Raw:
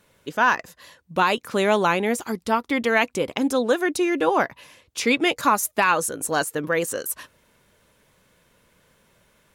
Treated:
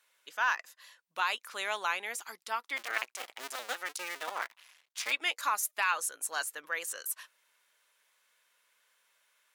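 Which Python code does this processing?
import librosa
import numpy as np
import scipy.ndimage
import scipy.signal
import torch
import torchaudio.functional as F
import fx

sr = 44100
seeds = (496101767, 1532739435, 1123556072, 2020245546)

y = fx.cycle_switch(x, sr, every=2, mode='muted', at=(2.76, 5.11), fade=0.02)
y = scipy.signal.sosfilt(scipy.signal.butter(2, 1200.0, 'highpass', fs=sr, output='sos'), y)
y = y * librosa.db_to_amplitude(-7.0)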